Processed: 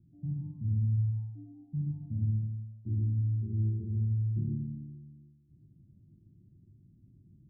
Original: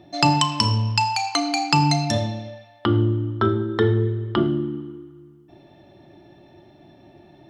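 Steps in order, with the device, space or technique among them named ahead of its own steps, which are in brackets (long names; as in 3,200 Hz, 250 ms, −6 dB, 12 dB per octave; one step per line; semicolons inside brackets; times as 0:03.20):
club heard from the street (brickwall limiter −13 dBFS, peak gain reduction 10.5 dB; low-pass filter 180 Hz 24 dB per octave; convolution reverb RT60 0.65 s, pre-delay 67 ms, DRR −1.5 dB)
level −5.5 dB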